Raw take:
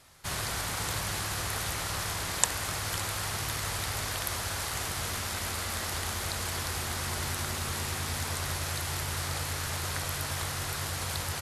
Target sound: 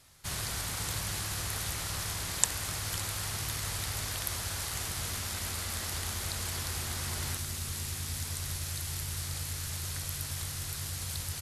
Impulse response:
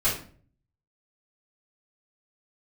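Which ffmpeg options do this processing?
-af "asetnsamples=nb_out_samples=441:pad=0,asendcmd='7.37 equalizer g -13',equalizer=frequency=810:width=0.32:gain=-6.5"

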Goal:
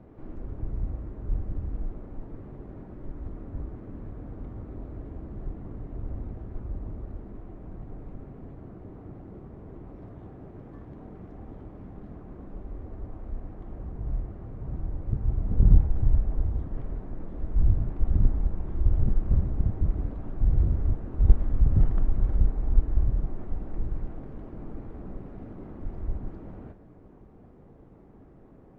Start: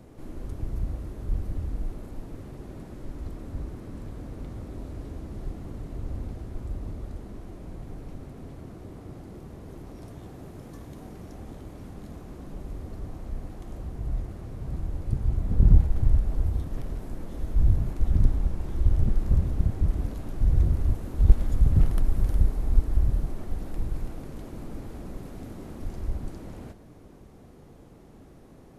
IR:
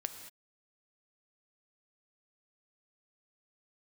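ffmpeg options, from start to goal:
-filter_complex "[0:a]lowpass=1700,asettb=1/sr,asplit=3[link_01][link_02][link_03];[link_01]atrim=end=12.464[link_04];[link_02]atrim=start=12.46:end=13.46,asetpts=PTS-STARTPTS,afade=type=in:duration=0.004:curve=qsin,afade=type=out:start_time=0.996:duration=0.004:curve=qsin,equalizer=frequency=150:width_type=o:width=0.49:gain=-8[link_05];[link_03]atrim=start=13.456[link_06];[link_04][link_05]acrossfade=duration=0.004:curve1=hsin:curve2=qsin[link_07];[link_07][link_06]acrossfade=duration=0.004:curve1=qsin:curve2=hsin[link_08];[1:a]atrim=start_sample=2205,atrim=end_sample=3528,asetrate=61740,aresample=44100[link_09];[link_08][link_09]afir=irnorm=-1:irlink=0,volume=3dB" -ar 48000 -c:a libopus -b:a 48k

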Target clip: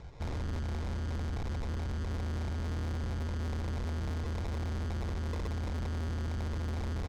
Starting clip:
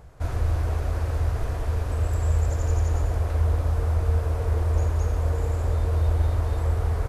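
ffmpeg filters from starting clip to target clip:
ffmpeg -i in.wav -filter_complex "[0:a]asplit=2[link_01][link_02];[link_02]adelay=310,lowpass=frequency=2000:poles=1,volume=-16dB,asplit=2[link_03][link_04];[link_04]adelay=310,lowpass=frequency=2000:poles=1,volume=0.55,asplit=2[link_05][link_06];[link_06]adelay=310,lowpass=frequency=2000:poles=1,volume=0.55,asplit=2[link_07][link_08];[link_08]adelay=310,lowpass=frequency=2000:poles=1,volume=0.55,asplit=2[link_09][link_10];[link_10]adelay=310,lowpass=frequency=2000:poles=1,volume=0.55[link_11];[link_03][link_05][link_07][link_09][link_11]amix=inputs=5:normalize=0[link_12];[link_01][link_12]amix=inputs=2:normalize=0,acrusher=samples=29:mix=1:aa=0.000001,asoftclip=type=hard:threshold=-28dB,lowpass=frequency=6400:width=0.5412,lowpass=frequency=6400:width=1.3066,bandreject=frequency=630:width=12,asoftclip=type=tanh:threshold=-32.5dB,equalizer=frequency=2700:width_type=o:width=0.35:gain=-4" out.wav

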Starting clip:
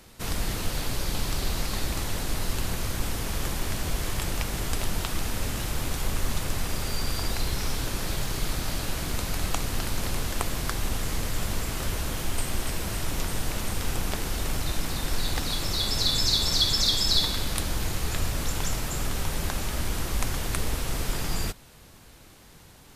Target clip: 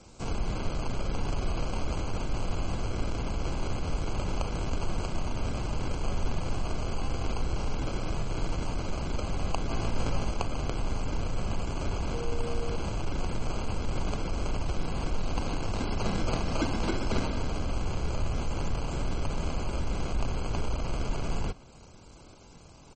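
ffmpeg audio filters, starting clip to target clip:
ffmpeg -i in.wav -filter_complex "[0:a]acrossover=split=130|4300[link_01][link_02][link_03];[link_02]acrusher=samples=24:mix=1:aa=0.000001[link_04];[link_03]acompressor=threshold=-50dB:ratio=8[link_05];[link_01][link_04][link_05]amix=inputs=3:normalize=0,asettb=1/sr,asplit=3[link_06][link_07][link_08];[link_06]atrim=end=12.144[link_09];[link_07]atrim=start=12.14:end=12.76,asetpts=PTS-STARTPTS,afade=type=in:duration=0.004:curve=qsin,afade=type=out:start_time=0.616:duration=0.004:curve=qsin,aeval=exprs='val(0)+0.02*sin(2*PI*470*n/s)':channel_layout=same[link_10];[link_08]atrim=start=12.756[link_11];[link_09][link_10]acrossfade=duration=0.004:curve1=hsin:curve2=qsin[link_12];[link_12][link_11]acrossfade=duration=0.004:curve1=qsin:curve2=hsin,asplit=2[link_13][link_14];[link_14]asoftclip=type=tanh:threshold=-28.5dB,volume=-3.5dB[link_15];[link_13][link_15]amix=inputs=2:normalize=0,aresample=22050,aresample=44100,asplit=3[link_16][link_17][link_18];[link_16]afade=type=out:start_time=9.69:duration=0.02[link_19];[link_17]asplit=2[link_20][link_21];[link_21]adelay=18,volume=-2dB[link_22];[link_20][link_22]amix=inputs=2:normalize=0,afade=type=in:start_time=9.69:duration=0.02,afade=type=out:start_time=10.31:duration=0.02[link_23];[link_18]afade=type=in:start_time=10.31:duration=0.02[link_24];[link_19][link_23][link_24]amix=inputs=3:normalize=0,volume=-3.5dB" -ar 44100 -c:a libmp3lame -b:a 32k out.mp3

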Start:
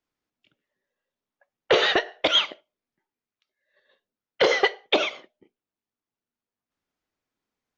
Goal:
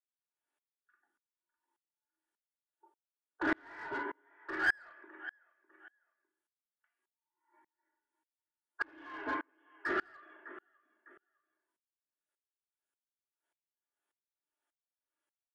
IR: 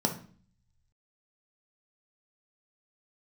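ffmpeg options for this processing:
-filter_complex "[0:a]aecho=1:1:1.8:0.53,alimiter=limit=-13.5dB:level=0:latency=1:release=57,highshelf=frequency=4400:gain=-5.5,aecho=1:1:302|604:0.0944|0.0283,asetrate=22050,aresample=44100,aderivative,afreqshift=60,bandreject=frequency=1100:width=16[link_01];[1:a]atrim=start_sample=2205,asetrate=79380,aresample=44100[link_02];[link_01][link_02]afir=irnorm=-1:irlink=0,asplit=2[link_03][link_04];[link_04]highpass=frequency=720:poles=1,volume=11dB,asoftclip=type=tanh:threshold=-29.5dB[link_05];[link_03][link_05]amix=inputs=2:normalize=0,lowpass=frequency=1900:poles=1,volume=-6dB,aeval=exprs='val(0)*pow(10,-35*if(lt(mod(-1.7*n/s,1),2*abs(-1.7)/1000),1-mod(-1.7*n/s,1)/(2*abs(-1.7)/1000),(mod(-1.7*n/s,1)-2*abs(-1.7)/1000)/(1-2*abs(-1.7)/1000))/20)':channel_layout=same,volume=8dB"

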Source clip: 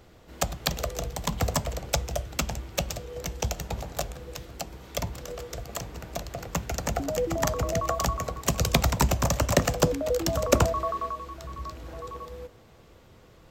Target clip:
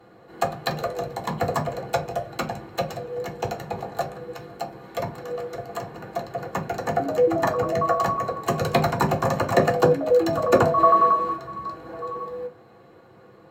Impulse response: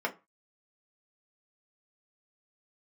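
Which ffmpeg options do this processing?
-filter_complex "[0:a]asplit=3[link_01][link_02][link_03];[link_01]afade=type=out:start_time=10.77:duration=0.02[link_04];[link_02]acontrast=77,afade=type=in:start_time=10.77:duration=0.02,afade=type=out:start_time=11.35:duration=0.02[link_05];[link_03]afade=type=in:start_time=11.35:duration=0.02[link_06];[link_04][link_05][link_06]amix=inputs=3:normalize=0[link_07];[1:a]atrim=start_sample=2205,asetrate=34398,aresample=44100[link_08];[link_07][link_08]afir=irnorm=-1:irlink=0,volume=-4.5dB"

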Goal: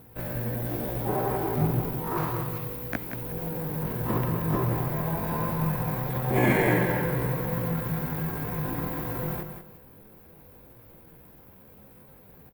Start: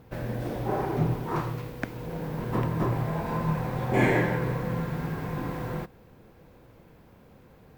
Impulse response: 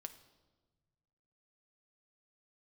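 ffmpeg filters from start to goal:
-filter_complex "[0:a]atempo=0.62,aexciter=amount=6.4:drive=3.5:freq=9400,asplit=2[link_01][link_02];[link_02]aecho=0:1:182|364|546:0.398|0.0955|0.0229[link_03];[link_01][link_03]amix=inputs=2:normalize=0"

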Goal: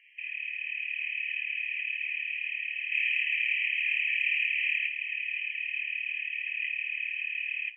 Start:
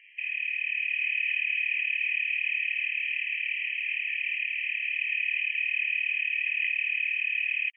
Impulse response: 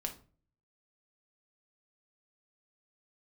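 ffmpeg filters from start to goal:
-filter_complex "[0:a]asplit=3[link_01][link_02][link_03];[link_01]afade=type=out:start_time=2.91:duration=0.02[link_04];[link_02]acontrast=75,afade=type=in:start_time=2.91:duration=0.02,afade=type=out:start_time=4.86:duration=0.02[link_05];[link_03]afade=type=in:start_time=4.86:duration=0.02[link_06];[link_04][link_05][link_06]amix=inputs=3:normalize=0,asplit=2[link_07][link_08];[1:a]atrim=start_sample=2205,adelay=7[link_09];[link_08][link_09]afir=irnorm=-1:irlink=0,volume=-6dB[link_10];[link_07][link_10]amix=inputs=2:normalize=0,volume=-5dB"

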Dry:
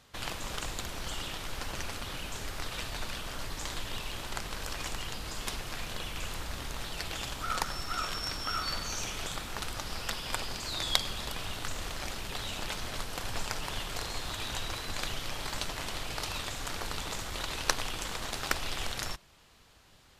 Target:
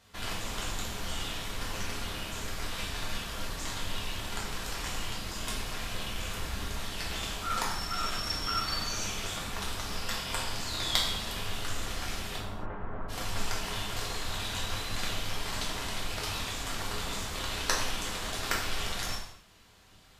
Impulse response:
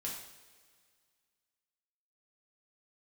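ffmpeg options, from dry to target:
-filter_complex "[0:a]asplit=3[link_01][link_02][link_03];[link_01]afade=type=out:start_time=12.36:duration=0.02[link_04];[link_02]lowpass=frequency=1400:width=0.5412,lowpass=frequency=1400:width=1.3066,afade=type=in:start_time=12.36:duration=0.02,afade=type=out:start_time=13.08:duration=0.02[link_05];[link_03]afade=type=in:start_time=13.08:duration=0.02[link_06];[link_04][link_05][link_06]amix=inputs=3:normalize=0[link_07];[1:a]atrim=start_sample=2205,afade=type=out:start_time=0.34:duration=0.01,atrim=end_sample=15435[link_08];[link_07][link_08]afir=irnorm=-1:irlink=0,volume=1.5dB"

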